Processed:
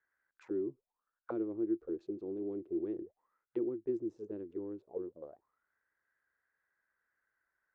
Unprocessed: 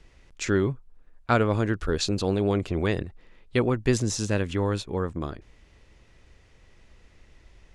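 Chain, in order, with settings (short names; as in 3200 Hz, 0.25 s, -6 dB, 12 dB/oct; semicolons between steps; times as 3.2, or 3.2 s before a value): Wiener smoothing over 15 samples; auto-wah 340–1700 Hz, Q 13, down, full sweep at -23 dBFS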